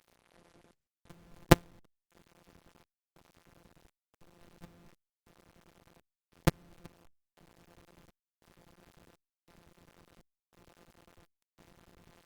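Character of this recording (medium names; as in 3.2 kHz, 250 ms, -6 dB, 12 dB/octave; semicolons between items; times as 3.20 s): a buzz of ramps at a fixed pitch in blocks of 256 samples; chopped level 0.95 Hz, depth 65%, duty 70%; a quantiser's noise floor 10-bit, dither none; Opus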